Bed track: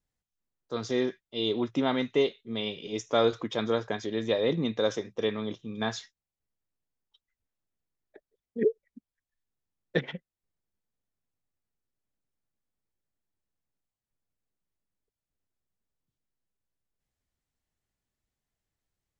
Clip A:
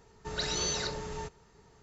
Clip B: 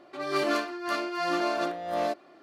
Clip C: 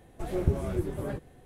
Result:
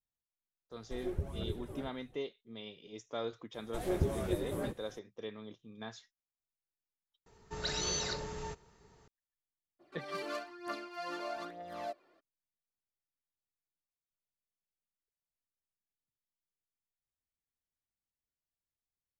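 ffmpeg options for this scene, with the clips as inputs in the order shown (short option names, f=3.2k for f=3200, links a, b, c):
-filter_complex "[3:a]asplit=2[a][b];[0:a]volume=-14.5dB[c];[a]aphaser=in_gain=1:out_gain=1:delay=3:decay=0.5:speed=1.4:type=triangular[d];[b]bass=f=250:g=-5,treble=f=4k:g=4[e];[2:a]aphaser=in_gain=1:out_gain=1:delay=2.3:decay=0.53:speed=1.1:type=triangular[f];[c]asplit=2[g][h];[g]atrim=end=7.264[i];[1:a]atrim=end=1.82,asetpts=PTS-STARTPTS,volume=-3dB[j];[h]atrim=start=9.076[k];[d]atrim=end=1.45,asetpts=PTS-STARTPTS,volume=-12.5dB,afade=t=in:d=0.004:c=hsin,afade=t=out:st=1.446:d=0.004:c=hsin,adelay=710[l];[e]atrim=end=1.45,asetpts=PTS-STARTPTS,volume=-2dB,afade=t=in:d=0.004:c=hsin,afade=t=out:st=1.446:d=0.004:c=hsin,adelay=3540[m];[f]atrim=end=2.42,asetpts=PTS-STARTPTS,volume=-13.5dB,afade=t=in:d=0.02,afade=t=out:st=2.4:d=0.02,adelay=9790[n];[i][j]acrossfade=d=0.004:c1=hsin:c2=hsin[o];[o][k]acrossfade=d=0.004:c1=hsin:c2=hsin[p];[p][l][m][n]amix=inputs=4:normalize=0"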